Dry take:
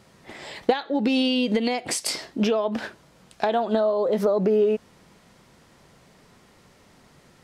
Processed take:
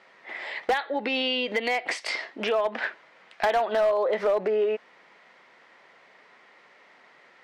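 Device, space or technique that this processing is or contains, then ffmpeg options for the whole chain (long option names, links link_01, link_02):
megaphone: -filter_complex "[0:a]asettb=1/sr,asplit=3[link_01][link_02][link_03];[link_01]atrim=end=2.814[link_04];[link_02]atrim=start=2.81:end=4.27,asetpts=PTS-STARTPTS,afade=type=in:duration=0.004:curve=qsin,afade=type=out:start_time=1.456:duration=0.004:curve=qsin,equalizer=frequency=2100:width_type=o:width=1.6:gain=2.5[link_05];[link_03]atrim=start=4.266[link_06];[link_04][link_05]acrossfade=duration=0.004:curve1=hsin:curve2=qsin[link_07];[link_07][link_06]acrossfade=duration=0.004:curve1=qsin:curve2=hsin,highpass=560,lowpass=3100,equalizer=frequency=2000:width_type=o:width=0.49:gain=7.5,asoftclip=type=hard:threshold=-19.5dB,volume=2dB"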